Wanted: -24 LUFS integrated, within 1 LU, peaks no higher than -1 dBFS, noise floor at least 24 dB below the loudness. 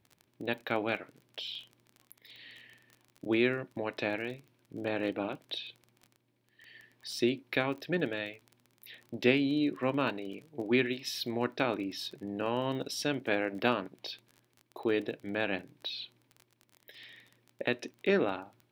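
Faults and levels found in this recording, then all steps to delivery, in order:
ticks 24/s; loudness -33.5 LUFS; peak -11.0 dBFS; loudness target -24.0 LUFS
-> de-click; gain +9.5 dB

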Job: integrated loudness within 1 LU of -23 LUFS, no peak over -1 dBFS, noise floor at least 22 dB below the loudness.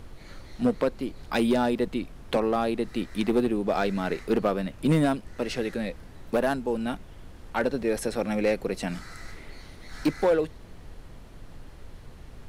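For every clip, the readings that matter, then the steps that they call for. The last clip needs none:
clipped 0.6%; flat tops at -16.0 dBFS; noise floor -47 dBFS; noise floor target -50 dBFS; loudness -27.5 LUFS; peak -16.0 dBFS; loudness target -23.0 LUFS
-> clip repair -16 dBFS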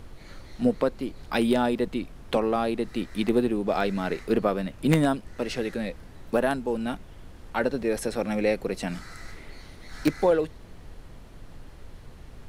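clipped 0.0%; noise floor -47 dBFS; noise floor target -49 dBFS
-> noise print and reduce 6 dB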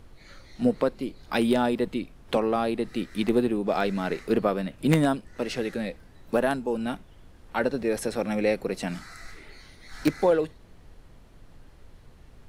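noise floor -52 dBFS; loudness -27.0 LUFS; peak -7.0 dBFS; loudness target -23.0 LUFS
-> gain +4 dB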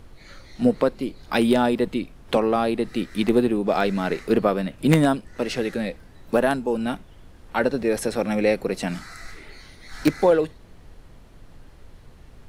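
loudness -23.0 LUFS; peak -3.0 dBFS; noise floor -48 dBFS

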